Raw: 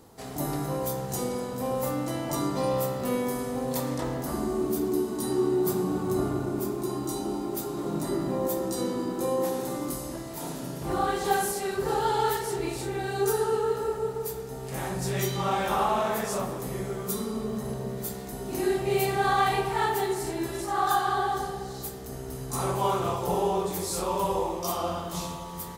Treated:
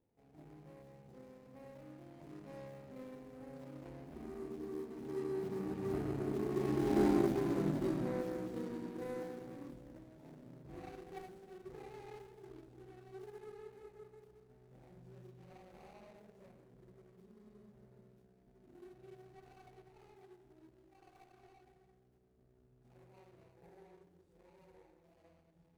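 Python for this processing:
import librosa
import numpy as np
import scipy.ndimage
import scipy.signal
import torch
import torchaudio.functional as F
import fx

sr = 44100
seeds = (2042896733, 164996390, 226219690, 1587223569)

y = scipy.ndimage.median_filter(x, 41, mode='constant')
y = fx.doppler_pass(y, sr, speed_mps=14, closest_m=3.8, pass_at_s=7.12)
y = F.gain(torch.from_numpy(y), 3.5).numpy()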